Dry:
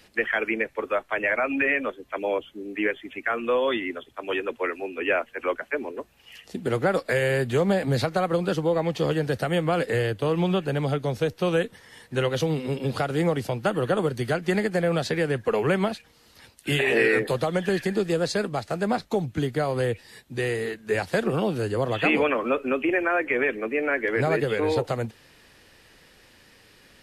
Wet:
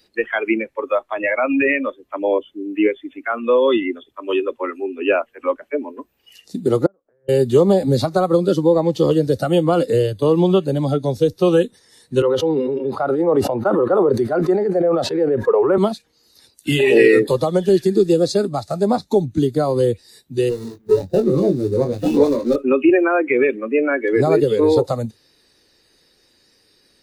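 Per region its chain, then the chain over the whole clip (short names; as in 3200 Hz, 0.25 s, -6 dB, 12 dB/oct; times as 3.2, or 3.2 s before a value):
6.86–7.29 steep low-pass 1500 Hz + compressor, threshold -29 dBFS + flipped gate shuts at -29 dBFS, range -25 dB
12.22–15.78 three-band isolator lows -16 dB, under 330 Hz, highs -19 dB, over 2000 Hz + sustainer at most 21 dB/s
20.49–22.56 median filter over 41 samples + doubler 21 ms -5 dB
whole clip: spectral noise reduction 14 dB; bell 360 Hz +8 dB 1.1 oct; gain +4.5 dB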